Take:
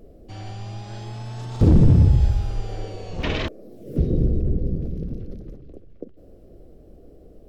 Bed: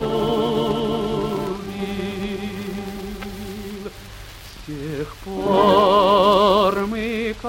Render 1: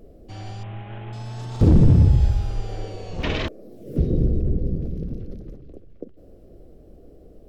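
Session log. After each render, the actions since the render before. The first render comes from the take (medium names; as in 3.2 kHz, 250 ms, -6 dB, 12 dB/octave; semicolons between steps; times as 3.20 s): 0.63–1.13 s: CVSD coder 16 kbps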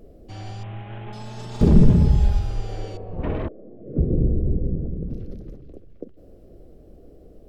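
1.06–2.39 s: comb 4.9 ms, depth 59%; 2.97–5.10 s: low-pass 1 kHz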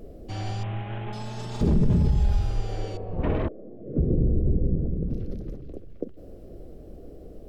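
peak limiter -14 dBFS, peak gain reduction 10 dB; gain riding within 4 dB 2 s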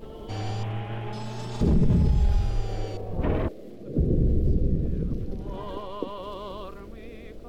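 add bed -23 dB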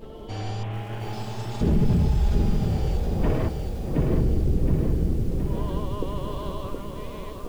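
multi-head delay 320 ms, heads second and third, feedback 46%, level -17.5 dB; bit-crushed delay 719 ms, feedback 55%, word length 8-bit, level -4.5 dB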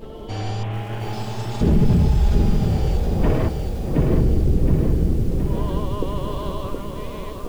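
trim +4.5 dB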